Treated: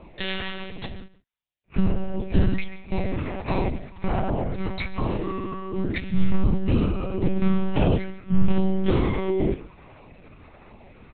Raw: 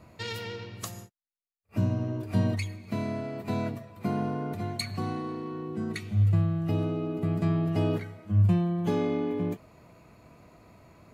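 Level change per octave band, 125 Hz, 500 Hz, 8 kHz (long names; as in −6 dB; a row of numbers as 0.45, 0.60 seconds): +0.5 dB, +5.0 dB, below −30 dB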